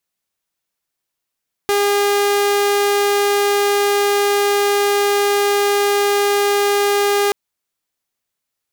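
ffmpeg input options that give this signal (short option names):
-f lavfi -i "aevalsrc='0.282*(2*mod(406*t,1)-1)':d=5.63:s=44100"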